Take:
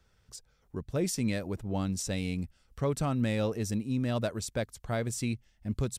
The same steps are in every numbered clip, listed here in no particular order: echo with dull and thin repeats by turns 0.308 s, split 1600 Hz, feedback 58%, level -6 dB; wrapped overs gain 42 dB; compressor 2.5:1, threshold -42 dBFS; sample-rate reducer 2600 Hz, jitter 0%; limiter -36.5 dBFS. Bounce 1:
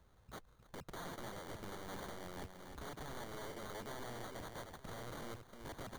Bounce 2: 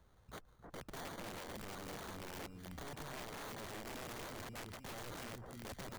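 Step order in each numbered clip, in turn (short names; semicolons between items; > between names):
compressor > limiter > wrapped overs > echo with dull and thin repeats by turns > sample-rate reducer; limiter > sample-rate reducer > echo with dull and thin repeats by turns > compressor > wrapped overs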